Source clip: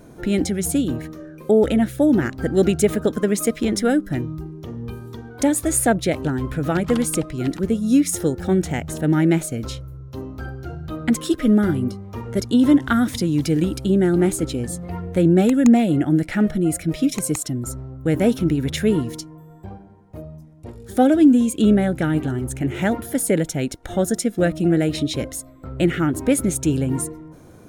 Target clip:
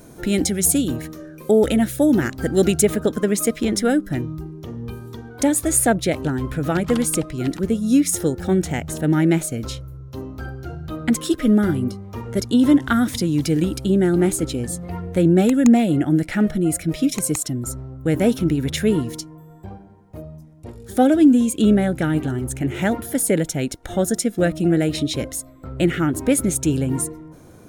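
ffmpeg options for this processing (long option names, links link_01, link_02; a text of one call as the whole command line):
ffmpeg -i in.wav -af "asetnsamples=nb_out_samples=441:pad=0,asendcmd='2.81 highshelf g 3',highshelf=frequency=4200:gain=10" out.wav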